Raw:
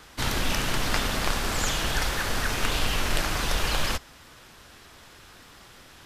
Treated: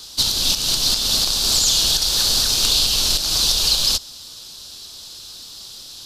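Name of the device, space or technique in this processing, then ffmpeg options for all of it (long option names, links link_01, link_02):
over-bright horn tweeter: -af "highshelf=frequency=2900:width_type=q:width=3:gain=13.5,alimiter=limit=-5.5dB:level=0:latency=1:release=211"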